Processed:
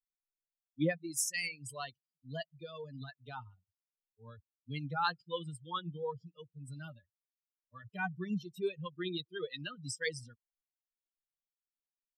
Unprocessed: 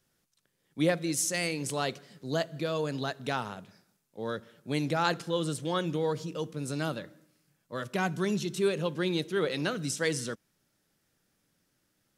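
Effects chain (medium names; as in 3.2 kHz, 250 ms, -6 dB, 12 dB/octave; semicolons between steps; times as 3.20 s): expander on every frequency bin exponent 3; graphic EQ with 31 bands 250 Hz -7 dB, 400 Hz -5 dB, 630 Hz -11 dB, 6.3 kHz -3 dB; trim +1 dB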